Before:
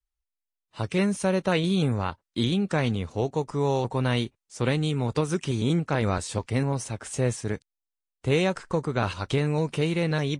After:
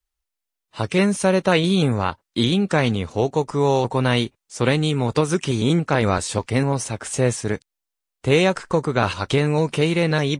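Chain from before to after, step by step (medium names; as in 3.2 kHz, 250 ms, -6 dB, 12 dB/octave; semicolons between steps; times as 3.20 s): bass shelf 180 Hz -5 dB; trim +7.5 dB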